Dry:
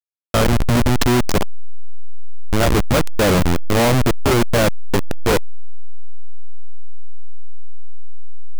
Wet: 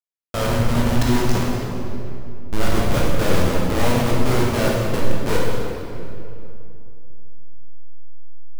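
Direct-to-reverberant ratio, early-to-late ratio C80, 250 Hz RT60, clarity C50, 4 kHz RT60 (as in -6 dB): -4.5 dB, 0.5 dB, 3.4 s, -1.5 dB, 1.9 s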